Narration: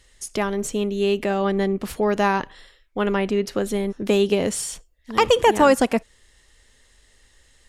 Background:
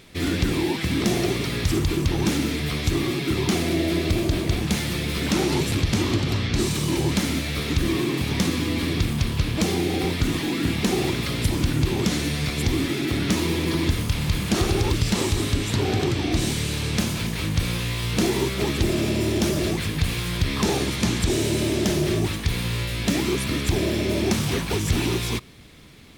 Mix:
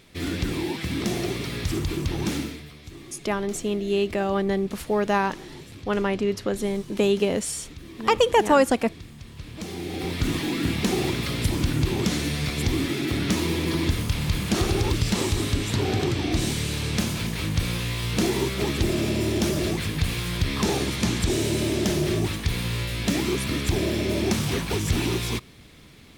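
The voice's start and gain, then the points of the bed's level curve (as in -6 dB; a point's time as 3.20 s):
2.90 s, -2.5 dB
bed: 2.39 s -4.5 dB
2.73 s -19.5 dB
9.22 s -19.5 dB
10.28 s -1.5 dB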